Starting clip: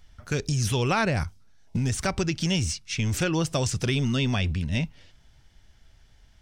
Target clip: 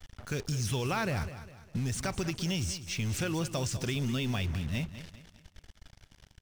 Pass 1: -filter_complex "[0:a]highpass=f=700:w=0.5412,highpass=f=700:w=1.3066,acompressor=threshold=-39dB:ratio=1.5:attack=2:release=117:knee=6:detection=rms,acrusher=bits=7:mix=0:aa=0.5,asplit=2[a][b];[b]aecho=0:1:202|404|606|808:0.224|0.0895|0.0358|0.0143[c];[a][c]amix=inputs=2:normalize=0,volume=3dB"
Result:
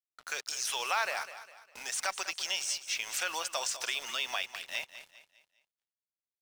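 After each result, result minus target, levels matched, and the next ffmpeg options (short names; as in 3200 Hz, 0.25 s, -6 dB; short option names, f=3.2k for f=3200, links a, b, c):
500 Hz band -5.5 dB; compressor: peak gain reduction -3 dB
-filter_complex "[0:a]acompressor=threshold=-39dB:ratio=1.5:attack=2:release=117:knee=6:detection=rms,acrusher=bits=7:mix=0:aa=0.5,asplit=2[a][b];[b]aecho=0:1:202|404|606|808:0.224|0.0895|0.0358|0.0143[c];[a][c]amix=inputs=2:normalize=0,volume=3dB"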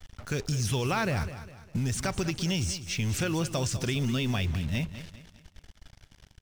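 compressor: peak gain reduction -3 dB
-filter_complex "[0:a]acompressor=threshold=-48.5dB:ratio=1.5:attack=2:release=117:knee=6:detection=rms,acrusher=bits=7:mix=0:aa=0.5,asplit=2[a][b];[b]aecho=0:1:202|404|606|808:0.224|0.0895|0.0358|0.0143[c];[a][c]amix=inputs=2:normalize=0,volume=3dB"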